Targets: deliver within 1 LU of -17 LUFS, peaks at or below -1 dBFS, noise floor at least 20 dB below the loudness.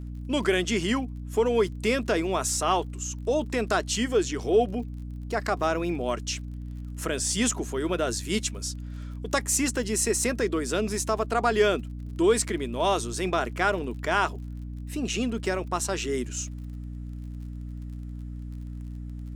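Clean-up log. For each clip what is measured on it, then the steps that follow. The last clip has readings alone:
ticks 39/s; hum 60 Hz; harmonics up to 300 Hz; hum level -34 dBFS; loudness -27.0 LUFS; peak -9.5 dBFS; loudness target -17.0 LUFS
-> de-click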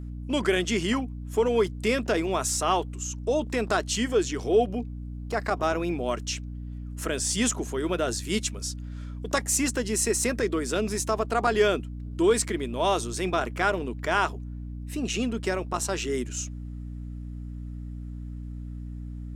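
ticks 0.47/s; hum 60 Hz; harmonics up to 300 Hz; hum level -34 dBFS
-> notches 60/120/180/240/300 Hz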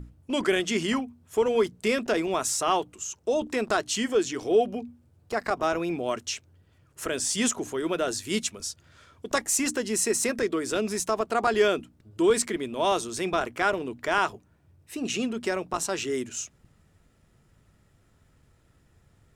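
hum none; loudness -27.0 LUFS; peak -10.0 dBFS; loudness target -17.0 LUFS
-> gain +10 dB; limiter -1 dBFS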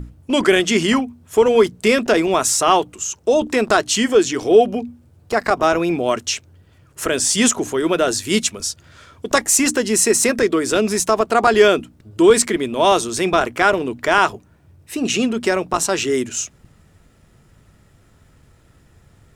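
loudness -17.0 LUFS; peak -1.0 dBFS; noise floor -53 dBFS

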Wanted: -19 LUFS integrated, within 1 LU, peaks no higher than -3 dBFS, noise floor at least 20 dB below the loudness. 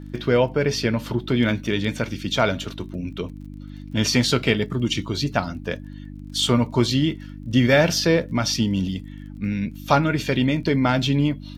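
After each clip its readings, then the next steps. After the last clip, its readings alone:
ticks 29/s; hum 50 Hz; harmonics up to 300 Hz; hum level -34 dBFS; loudness -22.0 LUFS; peak -3.0 dBFS; loudness target -19.0 LUFS
-> de-click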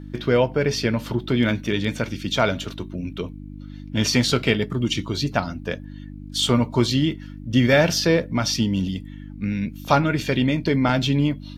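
ticks 0.17/s; hum 50 Hz; harmonics up to 300 Hz; hum level -34 dBFS
-> de-hum 50 Hz, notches 6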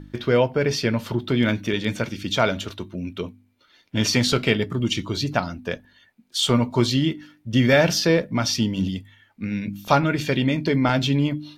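hum none; loudness -22.5 LUFS; peak -3.0 dBFS; loudness target -19.0 LUFS
-> gain +3.5 dB; limiter -3 dBFS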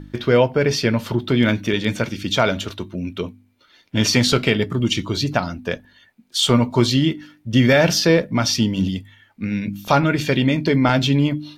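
loudness -19.0 LUFS; peak -3.0 dBFS; noise floor -57 dBFS

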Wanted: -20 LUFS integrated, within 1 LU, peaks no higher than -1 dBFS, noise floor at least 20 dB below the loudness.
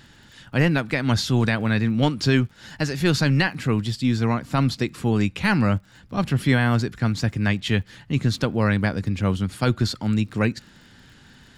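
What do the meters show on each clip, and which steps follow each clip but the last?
ticks 38/s; loudness -22.5 LUFS; peak -7.5 dBFS; loudness target -20.0 LUFS
-> de-click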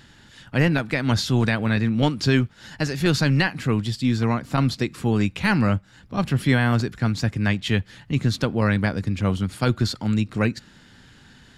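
ticks 0.086/s; loudness -22.5 LUFS; peak -7.5 dBFS; loudness target -20.0 LUFS
-> gain +2.5 dB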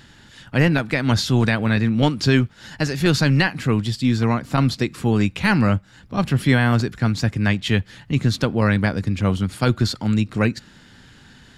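loudness -20.0 LUFS; peak -5.0 dBFS; noise floor -49 dBFS

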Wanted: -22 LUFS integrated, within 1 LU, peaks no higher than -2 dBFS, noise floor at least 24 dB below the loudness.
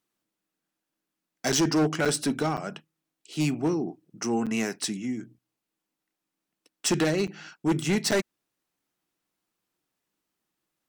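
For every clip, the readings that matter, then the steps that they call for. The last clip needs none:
clipped 1.3%; flat tops at -19.0 dBFS; dropouts 6; longest dropout 6.9 ms; loudness -27.5 LUFS; peak -19.0 dBFS; loudness target -22.0 LUFS
-> clip repair -19 dBFS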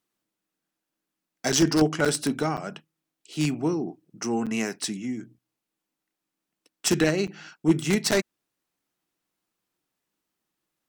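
clipped 0.0%; dropouts 6; longest dropout 6.9 ms
-> interpolate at 1.52/2.05/2.57/4.46/7.27/8.11, 6.9 ms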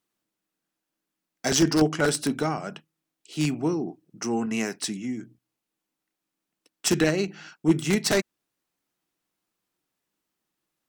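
dropouts 0; loudness -25.5 LUFS; peak -10.0 dBFS; loudness target -22.0 LUFS
-> gain +3.5 dB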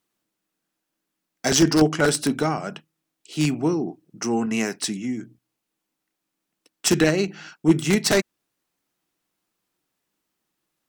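loudness -22.0 LUFS; peak -6.5 dBFS; noise floor -81 dBFS

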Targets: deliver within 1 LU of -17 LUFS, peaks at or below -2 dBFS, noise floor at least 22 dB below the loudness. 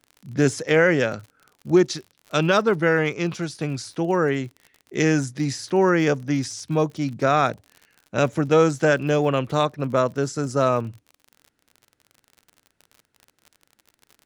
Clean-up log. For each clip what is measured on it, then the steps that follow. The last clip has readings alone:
ticks 49/s; loudness -22.0 LUFS; peak -6.0 dBFS; loudness target -17.0 LUFS
-> de-click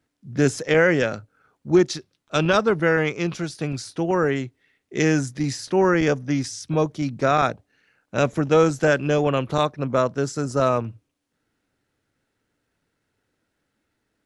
ticks 0/s; loudness -22.0 LUFS; peak -6.0 dBFS; loudness target -17.0 LUFS
-> gain +5 dB; limiter -2 dBFS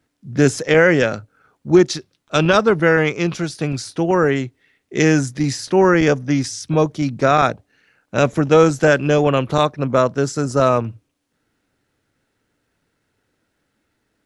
loudness -17.0 LUFS; peak -2.0 dBFS; noise floor -71 dBFS

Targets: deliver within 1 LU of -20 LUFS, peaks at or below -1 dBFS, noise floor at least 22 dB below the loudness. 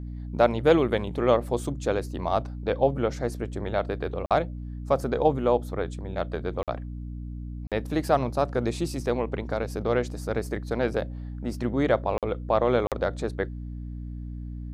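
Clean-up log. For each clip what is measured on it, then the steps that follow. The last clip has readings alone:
dropouts 5; longest dropout 47 ms; hum 60 Hz; harmonics up to 300 Hz; hum level -33 dBFS; loudness -27.0 LUFS; peak -6.5 dBFS; loudness target -20.0 LUFS
-> interpolate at 4.26/6.63/7.67/12.18/12.87, 47 ms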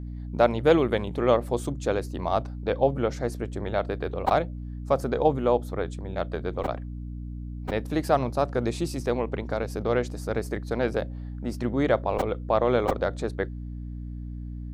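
dropouts 0; hum 60 Hz; harmonics up to 300 Hz; hum level -33 dBFS
-> de-hum 60 Hz, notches 5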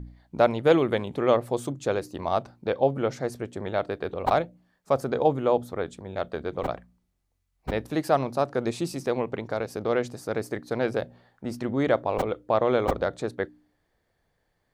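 hum none; loudness -27.0 LUFS; peak -7.0 dBFS; loudness target -20.0 LUFS
-> gain +7 dB; limiter -1 dBFS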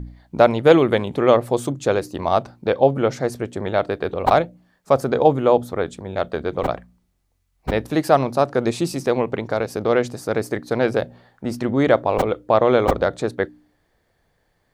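loudness -20.0 LUFS; peak -1.0 dBFS; noise floor -67 dBFS

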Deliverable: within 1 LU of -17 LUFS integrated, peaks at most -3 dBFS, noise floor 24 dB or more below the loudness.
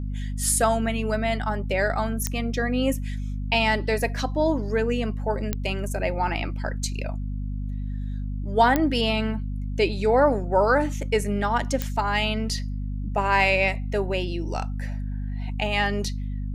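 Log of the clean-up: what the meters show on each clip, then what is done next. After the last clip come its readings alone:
clicks 4; hum 50 Hz; harmonics up to 250 Hz; hum level -27 dBFS; loudness -25.0 LUFS; peak -7.0 dBFS; loudness target -17.0 LUFS
-> de-click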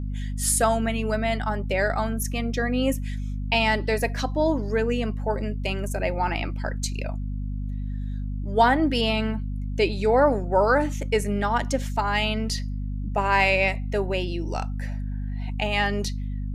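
clicks 0; hum 50 Hz; harmonics up to 250 Hz; hum level -27 dBFS
-> notches 50/100/150/200/250 Hz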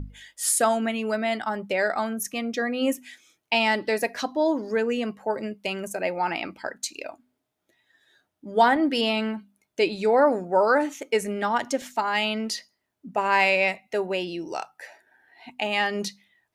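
hum none; loudness -25.0 LUFS; peak -7.0 dBFS; loudness target -17.0 LUFS
-> gain +8 dB; limiter -3 dBFS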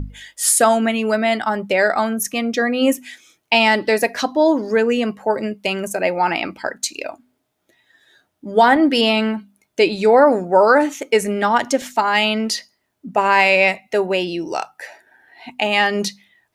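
loudness -17.5 LUFS; peak -3.0 dBFS; noise floor -72 dBFS

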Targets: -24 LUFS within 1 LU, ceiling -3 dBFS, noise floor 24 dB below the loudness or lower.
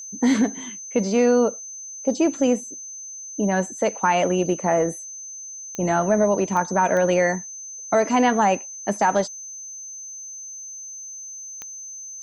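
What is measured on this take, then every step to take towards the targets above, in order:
clicks 4; steady tone 6200 Hz; tone level -34 dBFS; loudness -21.5 LUFS; peak -7.0 dBFS; loudness target -24.0 LUFS
-> de-click; notch 6200 Hz, Q 30; gain -2.5 dB

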